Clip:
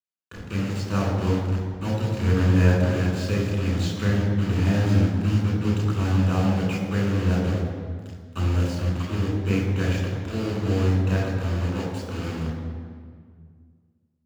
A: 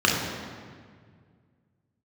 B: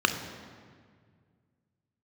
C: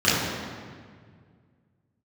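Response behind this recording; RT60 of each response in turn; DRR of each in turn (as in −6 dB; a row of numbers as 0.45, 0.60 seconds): A; 1.9, 1.9, 1.9 seconds; −3.0, 6.0, −11.5 decibels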